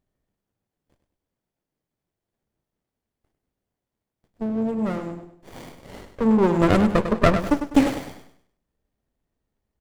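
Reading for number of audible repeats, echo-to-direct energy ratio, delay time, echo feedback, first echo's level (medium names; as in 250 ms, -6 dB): 3, -8.5 dB, 100 ms, 34%, -9.0 dB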